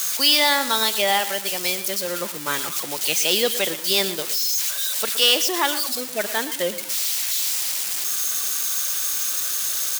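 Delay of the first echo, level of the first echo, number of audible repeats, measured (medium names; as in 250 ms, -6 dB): 117 ms, -14.0 dB, 3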